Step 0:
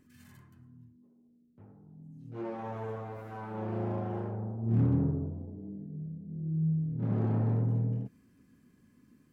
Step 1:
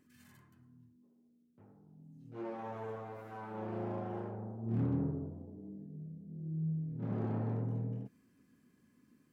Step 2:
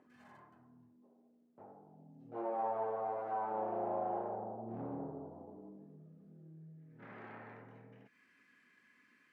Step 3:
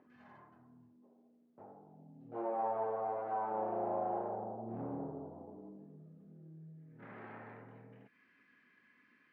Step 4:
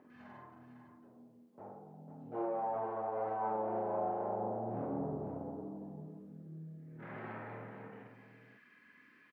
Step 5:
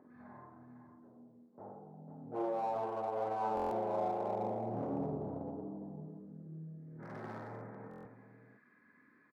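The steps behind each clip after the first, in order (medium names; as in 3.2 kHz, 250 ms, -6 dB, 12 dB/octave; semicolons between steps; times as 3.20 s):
bass shelf 110 Hz -11 dB; trim -3 dB
compression 2:1, threshold -48 dBFS, peak gain reduction 10.5 dB; band-pass sweep 720 Hz -> 2 kHz, 4.99–7.16 s; trim +16 dB
distance through air 190 m; trim +1.5 dB
peak limiter -34.5 dBFS, peak gain reduction 8.5 dB; multi-tap echo 46/285/501 ms -4.5/-18.5/-8 dB; trim +3.5 dB
local Wiener filter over 15 samples; buffer glitch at 3.55/7.89 s, samples 1024, times 6; trim +1 dB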